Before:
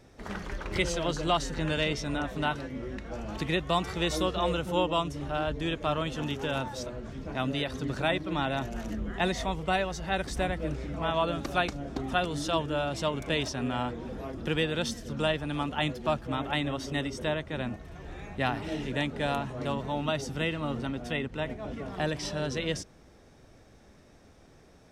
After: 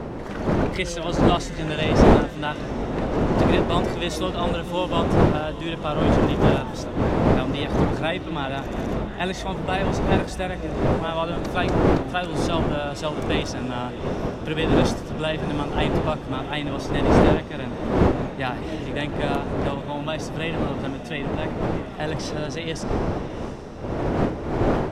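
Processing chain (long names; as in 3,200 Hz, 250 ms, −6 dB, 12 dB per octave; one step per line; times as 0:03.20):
wind on the microphone 470 Hz −26 dBFS
feedback delay with all-pass diffusion 707 ms, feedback 59%, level −15 dB
level +2 dB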